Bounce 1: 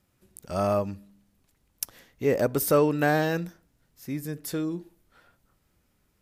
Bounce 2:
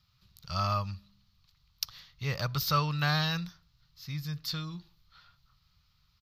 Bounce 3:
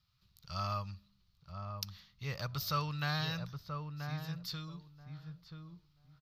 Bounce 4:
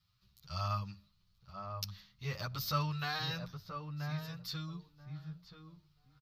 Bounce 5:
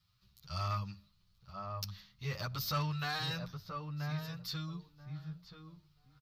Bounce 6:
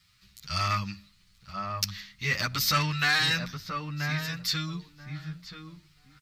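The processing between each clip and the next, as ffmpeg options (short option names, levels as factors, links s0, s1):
-af "firequalizer=gain_entry='entry(150,0);entry(240,-22);entry(380,-24);entry(1200,2);entry(1600,-7);entry(4300,11);entry(9100,-26);entry(13000,-8)':delay=0.05:min_phase=1,volume=1.26"
-filter_complex "[0:a]asplit=2[s0][s1];[s1]adelay=982,lowpass=f=930:p=1,volume=0.596,asplit=2[s2][s3];[s3]adelay=982,lowpass=f=930:p=1,volume=0.19,asplit=2[s4][s5];[s5]adelay=982,lowpass=f=930:p=1,volume=0.19[s6];[s0][s2][s4][s6]amix=inputs=4:normalize=0,volume=0.447"
-filter_complex "[0:a]asplit=2[s0][s1];[s1]adelay=9.3,afreqshift=1.7[s2];[s0][s2]amix=inputs=2:normalize=1,volume=1.41"
-af "asoftclip=type=tanh:threshold=0.0376,volume=1.19"
-af "equalizer=f=125:t=o:w=1:g=-5,equalizer=f=250:t=o:w=1:g=7,equalizer=f=500:t=o:w=1:g=-4,equalizer=f=1000:t=o:w=1:g=-3,equalizer=f=2000:t=o:w=1:g=12,equalizer=f=8000:t=o:w=1:g=11,volume=2.37"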